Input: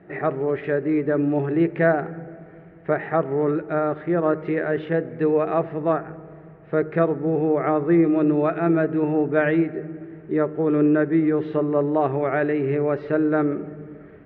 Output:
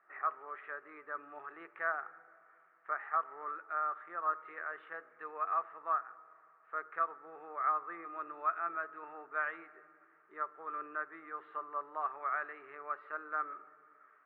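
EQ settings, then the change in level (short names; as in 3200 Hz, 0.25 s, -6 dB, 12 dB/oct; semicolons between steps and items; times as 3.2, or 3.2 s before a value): ladder band-pass 1300 Hz, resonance 75%; air absorption 79 m; -1.5 dB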